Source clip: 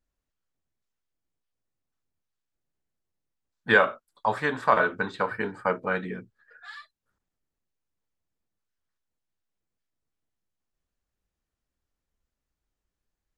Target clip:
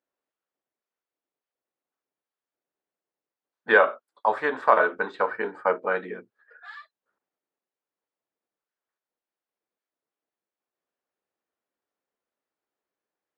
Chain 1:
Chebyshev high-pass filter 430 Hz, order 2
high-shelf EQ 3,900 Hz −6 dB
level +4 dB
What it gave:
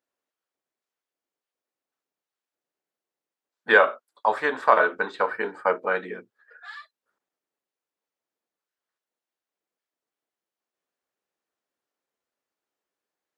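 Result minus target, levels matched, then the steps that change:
4,000 Hz band +4.0 dB
change: high-shelf EQ 3,900 Hz −17 dB

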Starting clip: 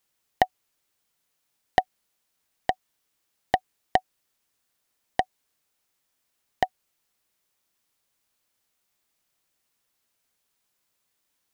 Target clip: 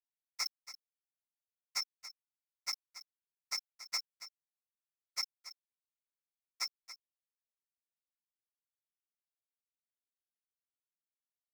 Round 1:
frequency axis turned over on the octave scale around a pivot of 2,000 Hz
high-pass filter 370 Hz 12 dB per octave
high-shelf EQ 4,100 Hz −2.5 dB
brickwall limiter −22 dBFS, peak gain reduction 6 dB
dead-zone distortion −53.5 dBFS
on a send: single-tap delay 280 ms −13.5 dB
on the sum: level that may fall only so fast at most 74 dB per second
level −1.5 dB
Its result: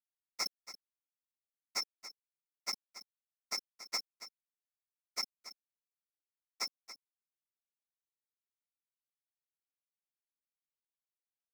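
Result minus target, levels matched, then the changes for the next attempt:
500 Hz band +11.0 dB
change: high-pass filter 1,100 Hz 12 dB per octave

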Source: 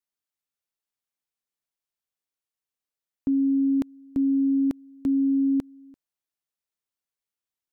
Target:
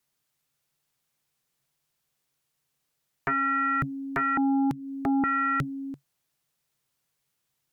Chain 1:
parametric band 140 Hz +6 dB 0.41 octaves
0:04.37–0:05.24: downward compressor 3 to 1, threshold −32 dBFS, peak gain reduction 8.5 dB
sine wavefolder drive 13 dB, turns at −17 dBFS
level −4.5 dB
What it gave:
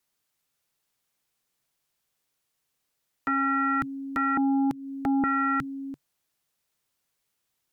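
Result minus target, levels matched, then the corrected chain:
125 Hz band −10.0 dB
parametric band 140 Hz +15 dB 0.41 octaves
0:04.37–0:05.24: downward compressor 3 to 1, threshold −32 dBFS, peak gain reduction 9 dB
sine wavefolder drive 13 dB, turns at −17 dBFS
level −4.5 dB

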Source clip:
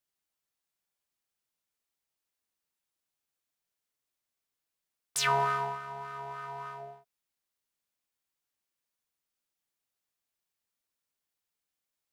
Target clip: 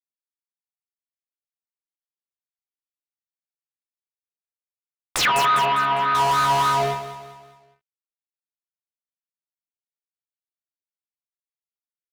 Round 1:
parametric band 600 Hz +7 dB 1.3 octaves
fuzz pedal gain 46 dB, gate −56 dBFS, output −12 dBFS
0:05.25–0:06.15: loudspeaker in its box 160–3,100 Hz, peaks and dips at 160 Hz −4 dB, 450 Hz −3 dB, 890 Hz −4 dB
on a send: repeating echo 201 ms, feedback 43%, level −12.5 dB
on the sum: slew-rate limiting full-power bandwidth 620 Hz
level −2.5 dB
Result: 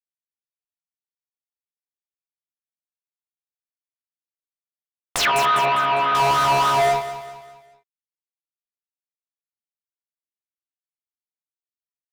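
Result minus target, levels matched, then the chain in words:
500 Hz band +4.0 dB
parametric band 600 Hz −4.5 dB 1.3 octaves
fuzz pedal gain 46 dB, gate −56 dBFS, output −12 dBFS
0:05.25–0:06.15: loudspeaker in its box 160–3,100 Hz, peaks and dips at 160 Hz −4 dB, 450 Hz −3 dB, 890 Hz −4 dB
on a send: repeating echo 201 ms, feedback 43%, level −12.5 dB
on the sum: slew-rate limiting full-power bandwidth 620 Hz
level −2.5 dB

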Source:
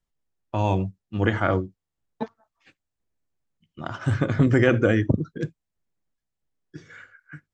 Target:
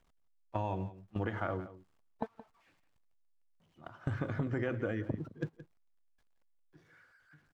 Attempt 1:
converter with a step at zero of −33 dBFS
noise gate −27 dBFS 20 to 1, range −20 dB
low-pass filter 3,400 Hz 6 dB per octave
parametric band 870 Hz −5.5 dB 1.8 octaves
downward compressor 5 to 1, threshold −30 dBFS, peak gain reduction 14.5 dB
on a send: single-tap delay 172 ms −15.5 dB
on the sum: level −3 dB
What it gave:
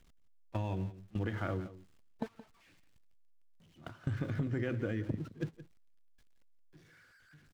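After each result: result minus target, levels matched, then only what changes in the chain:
converter with a step at zero: distortion +9 dB; 1,000 Hz band −5.5 dB
change: converter with a step at zero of −42 dBFS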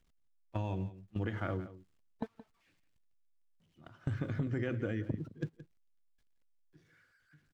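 1,000 Hz band −5.5 dB
change: parametric band 870 Hz +4.5 dB 1.8 octaves

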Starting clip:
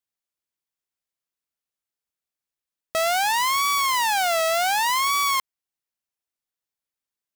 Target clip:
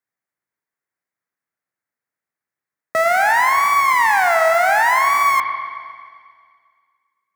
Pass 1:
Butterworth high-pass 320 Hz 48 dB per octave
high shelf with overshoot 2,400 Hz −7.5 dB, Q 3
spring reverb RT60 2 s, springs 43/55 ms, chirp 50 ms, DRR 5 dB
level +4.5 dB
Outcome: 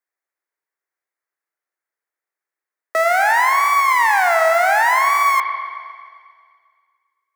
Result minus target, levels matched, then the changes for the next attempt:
250 Hz band −6.5 dB
change: Butterworth high-pass 89 Hz 48 dB per octave

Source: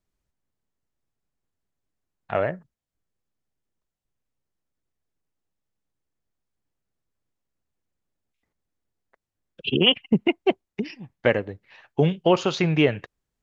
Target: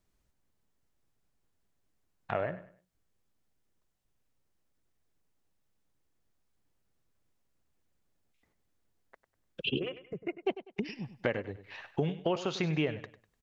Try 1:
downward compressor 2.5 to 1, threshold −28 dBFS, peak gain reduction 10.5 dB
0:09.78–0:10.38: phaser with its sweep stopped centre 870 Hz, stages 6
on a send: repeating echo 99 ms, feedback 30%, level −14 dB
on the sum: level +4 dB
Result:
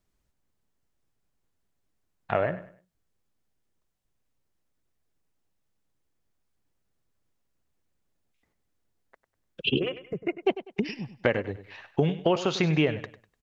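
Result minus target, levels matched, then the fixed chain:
downward compressor: peak gain reduction −7 dB
downward compressor 2.5 to 1, threshold −39.5 dBFS, peak gain reduction 17.5 dB
0:09.78–0:10.38: phaser with its sweep stopped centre 870 Hz, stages 6
on a send: repeating echo 99 ms, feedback 30%, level −14 dB
on the sum: level +4 dB

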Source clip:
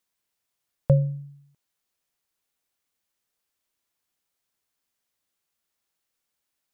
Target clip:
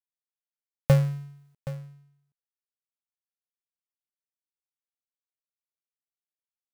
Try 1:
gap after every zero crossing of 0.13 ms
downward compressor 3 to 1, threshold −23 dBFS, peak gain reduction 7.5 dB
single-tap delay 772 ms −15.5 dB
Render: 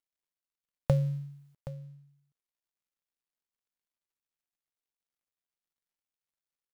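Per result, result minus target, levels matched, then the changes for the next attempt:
gap after every zero crossing: distortion −12 dB; downward compressor: peak gain reduction +7.5 dB
change: gap after every zero crossing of 0.35 ms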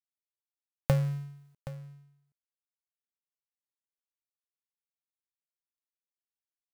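downward compressor: peak gain reduction +7.5 dB
remove: downward compressor 3 to 1, threshold −23 dBFS, peak gain reduction 7.5 dB

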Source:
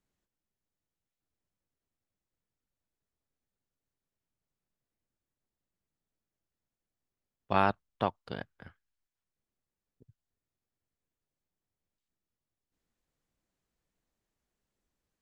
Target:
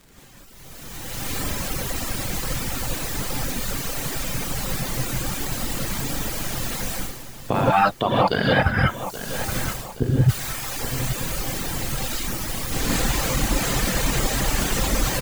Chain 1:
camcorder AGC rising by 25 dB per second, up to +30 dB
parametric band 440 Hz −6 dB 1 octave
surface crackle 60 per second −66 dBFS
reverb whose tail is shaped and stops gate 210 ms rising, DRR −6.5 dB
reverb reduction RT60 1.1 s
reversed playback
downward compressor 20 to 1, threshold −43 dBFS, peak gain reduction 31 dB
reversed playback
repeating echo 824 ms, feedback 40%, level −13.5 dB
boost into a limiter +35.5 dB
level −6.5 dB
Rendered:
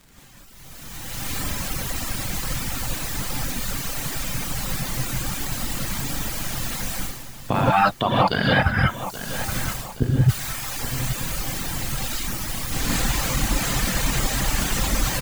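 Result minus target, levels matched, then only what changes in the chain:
500 Hz band −2.5 dB
remove: parametric band 440 Hz −6 dB 1 octave

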